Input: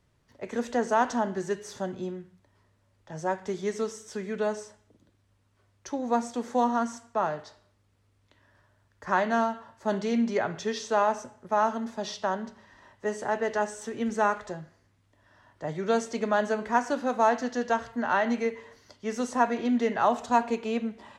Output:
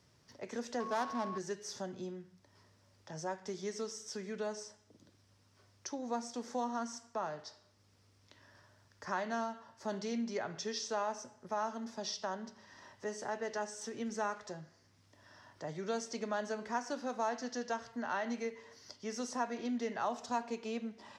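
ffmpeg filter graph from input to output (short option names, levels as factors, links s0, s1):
-filter_complex "[0:a]asettb=1/sr,asplit=3[s0][s1][s2];[s0]atrim=end=0.804[s3];[s1]atrim=start=0.8:end=1.38,asetpts=PTS-STARTPTS,afade=t=in:d=0.004:c=qsin,afade=t=out:st=0.576:d=0.004:c=qsin,aeval=exprs='val(0)+0.5*0.0178*sgn(val(0))':c=same,adynamicsmooth=sensitivity=4:basefreq=960,aeval=exprs='val(0)+0.0316*sin(2*PI*1100*n/s)':c=same[s4];[s2]atrim=start=1.376[s5];[s3][s4]acrossfade=d=0.004:c1=hsin:c2=qsin[s6];[s6][s5]acrossfade=d=0.004:c1=qsin:c2=hsin,highpass=91,equalizer=f=5300:t=o:w=0.58:g=11.5,acompressor=threshold=0.00112:ratio=1.5,volume=1.19"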